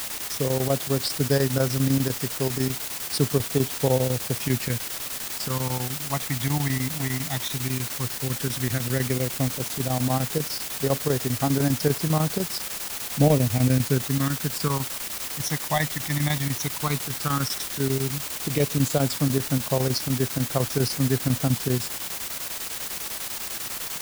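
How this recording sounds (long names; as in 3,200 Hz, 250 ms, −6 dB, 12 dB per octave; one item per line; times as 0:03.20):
phaser sweep stages 12, 0.11 Hz, lowest notch 450–3,000 Hz
a quantiser's noise floor 6 bits, dither triangular
chopped level 10 Hz, depth 60%, duty 80%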